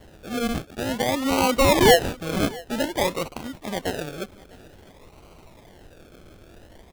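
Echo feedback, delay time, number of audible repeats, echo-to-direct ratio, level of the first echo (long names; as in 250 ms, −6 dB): repeats not evenly spaced, 653 ms, 1, −22.5 dB, −22.5 dB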